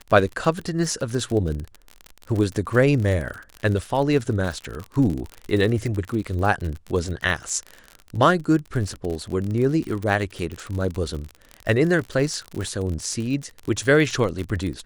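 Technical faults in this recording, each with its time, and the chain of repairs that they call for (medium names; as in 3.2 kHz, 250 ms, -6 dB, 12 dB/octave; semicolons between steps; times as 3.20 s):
crackle 50 per s -27 dBFS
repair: de-click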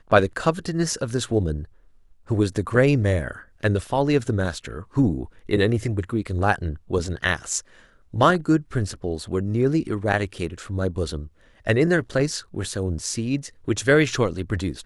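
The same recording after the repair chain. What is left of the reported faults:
nothing left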